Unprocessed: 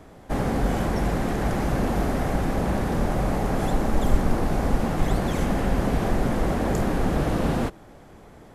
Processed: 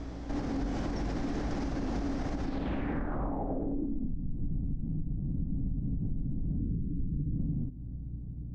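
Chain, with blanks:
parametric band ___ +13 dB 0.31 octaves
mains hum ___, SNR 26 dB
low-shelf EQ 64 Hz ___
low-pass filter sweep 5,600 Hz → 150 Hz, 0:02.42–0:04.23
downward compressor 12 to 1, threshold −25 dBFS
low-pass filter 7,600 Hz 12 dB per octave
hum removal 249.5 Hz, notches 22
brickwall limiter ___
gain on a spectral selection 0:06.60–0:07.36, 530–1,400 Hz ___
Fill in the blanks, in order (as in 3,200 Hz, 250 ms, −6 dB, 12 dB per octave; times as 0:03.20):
280 Hz, 60 Hz, +7.5 dB, −25 dBFS, −25 dB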